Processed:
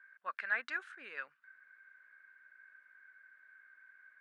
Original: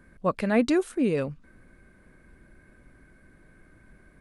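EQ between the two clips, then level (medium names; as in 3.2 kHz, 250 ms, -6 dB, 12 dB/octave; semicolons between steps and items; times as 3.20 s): ladder band-pass 1.7 kHz, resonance 70%; +3.5 dB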